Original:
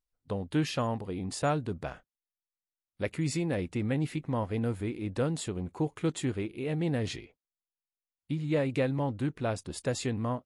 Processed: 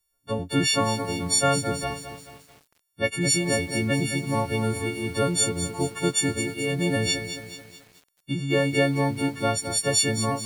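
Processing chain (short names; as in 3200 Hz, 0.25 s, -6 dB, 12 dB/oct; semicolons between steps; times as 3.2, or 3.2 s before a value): frequency quantiser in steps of 4 st; lo-fi delay 0.216 s, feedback 55%, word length 8-bit, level -9.5 dB; gain +5 dB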